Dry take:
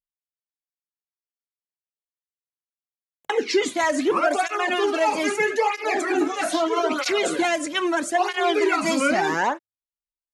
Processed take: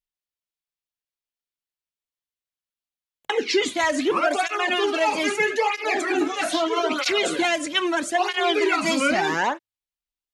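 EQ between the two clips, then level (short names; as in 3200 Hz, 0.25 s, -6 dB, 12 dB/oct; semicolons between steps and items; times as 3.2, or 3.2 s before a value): low shelf 78 Hz +9.5 dB; bell 3200 Hz +6 dB 1.3 oct; -1.5 dB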